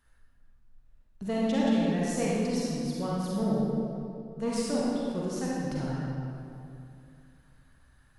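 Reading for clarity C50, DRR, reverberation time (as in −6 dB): −4.5 dB, −6.5 dB, 2.6 s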